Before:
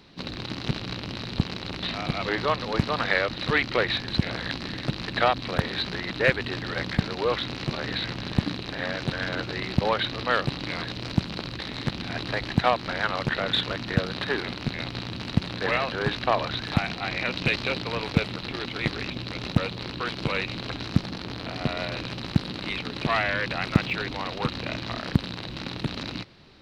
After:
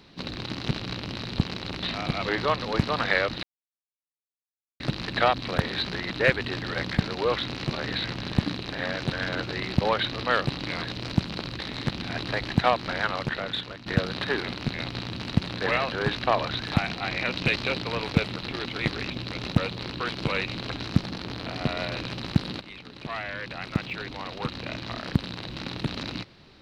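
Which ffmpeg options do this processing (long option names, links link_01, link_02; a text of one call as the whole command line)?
ffmpeg -i in.wav -filter_complex "[0:a]asplit=5[link_01][link_02][link_03][link_04][link_05];[link_01]atrim=end=3.43,asetpts=PTS-STARTPTS,afade=type=out:start_time=3.426:duration=0.004:curve=hsin[link_06];[link_02]atrim=start=3.43:end=4.8,asetpts=PTS-STARTPTS,volume=0[link_07];[link_03]atrim=start=4.8:end=13.86,asetpts=PTS-STARTPTS,afade=type=in:duration=0.004:curve=hsin,afade=type=out:start_time=8.18:duration=0.88:silence=0.223872[link_08];[link_04]atrim=start=13.86:end=22.61,asetpts=PTS-STARTPTS,afade=type=in:duration=0.004:curve=hsin:silence=0.223872,afade=type=out:start_time=8.746:duration=0.004:curve=hsin:silence=0.211349[link_09];[link_05]atrim=start=22.61,asetpts=PTS-STARTPTS,afade=type=in:duration=3.26:silence=0.211349[link_10];[link_06][link_07][link_08][link_09][link_10]concat=n=5:v=0:a=1" out.wav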